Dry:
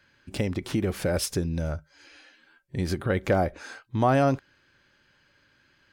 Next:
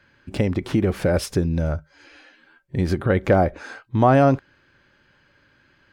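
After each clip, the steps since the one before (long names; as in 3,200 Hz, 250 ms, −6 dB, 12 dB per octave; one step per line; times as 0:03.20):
high-shelf EQ 3,400 Hz −10.5 dB
level +6.5 dB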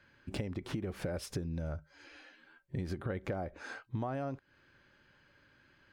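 downward compressor 12 to 1, threshold −27 dBFS, peak gain reduction 16.5 dB
level −6.5 dB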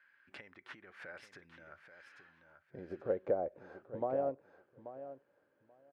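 band-pass filter sweep 1,700 Hz → 530 Hz, 0:02.01–0:02.88
on a send: repeating echo 834 ms, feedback 18%, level −8.5 dB
on the sum: expander for the loud parts 1.5 to 1, over −55 dBFS
level +9.5 dB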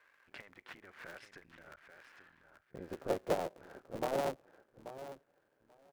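sub-harmonics by changed cycles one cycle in 3, muted
level +1.5 dB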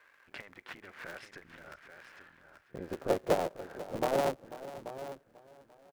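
single-tap delay 492 ms −15.5 dB
level +5 dB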